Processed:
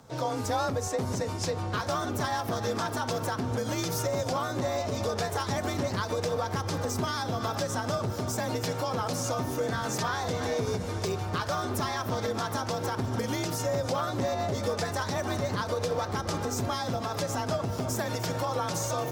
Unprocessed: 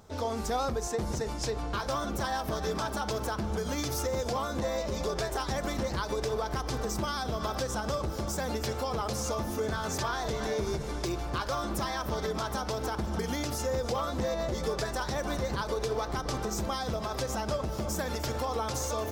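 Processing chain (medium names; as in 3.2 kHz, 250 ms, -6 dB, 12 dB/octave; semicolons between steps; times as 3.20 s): harmony voices +4 st -15 dB; frequency shift +40 Hz; trim +1.5 dB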